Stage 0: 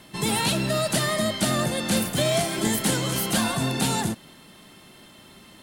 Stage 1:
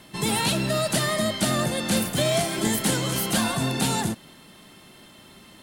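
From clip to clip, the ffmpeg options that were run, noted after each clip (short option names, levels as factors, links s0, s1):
-af anull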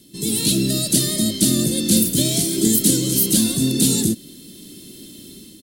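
-af "firequalizer=gain_entry='entry(140,0);entry(300,8);entry(780,-23);entry(3800,1)':delay=0.05:min_phase=1,dynaudnorm=f=170:g=5:m=3.16,crystalizer=i=1:c=0,volume=0.708"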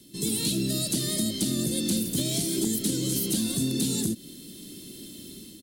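-filter_complex "[0:a]acrossover=split=260|5700[s0][s1][s2];[s2]alimiter=limit=0.237:level=0:latency=1:release=213[s3];[s0][s1][s3]amix=inputs=3:normalize=0,acompressor=threshold=0.0891:ratio=4,asoftclip=type=hard:threshold=0.178,volume=0.708"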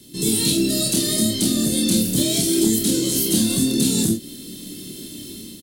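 -af "aecho=1:1:27|48:0.708|0.447,volume=1.88"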